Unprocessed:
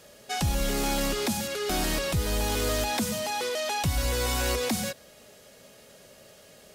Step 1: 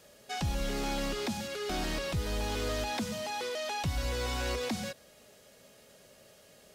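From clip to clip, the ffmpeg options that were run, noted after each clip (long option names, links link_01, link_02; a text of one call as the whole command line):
ffmpeg -i in.wav -filter_complex "[0:a]acrossover=split=6300[link_01][link_02];[link_02]acompressor=threshold=-46dB:ratio=4:attack=1:release=60[link_03];[link_01][link_03]amix=inputs=2:normalize=0,volume=-5.5dB" out.wav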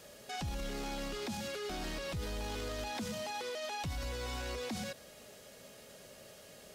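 ffmpeg -i in.wav -af "alimiter=level_in=11dB:limit=-24dB:level=0:latency=1:release=33,volume=-11dB,volume=3.5dB" out.wav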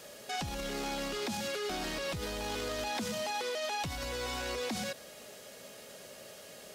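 ffmpeg -i in.wav -af "lowshelf=frequency=130:gain=-11,volume=5dB" out.wav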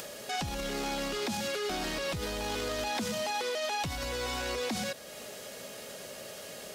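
ffmpeg -i in.wav -af "acompressor=mode=upward:threshold=-40dB:ratio=2.5,volume=2.5dB" out.wav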